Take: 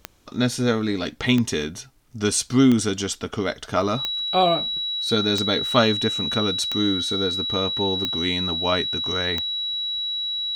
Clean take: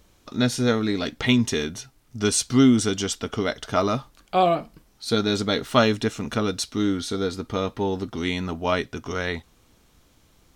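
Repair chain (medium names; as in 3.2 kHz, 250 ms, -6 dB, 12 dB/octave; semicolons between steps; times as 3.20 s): de-click; band-stop 3.9 kHz, Q 30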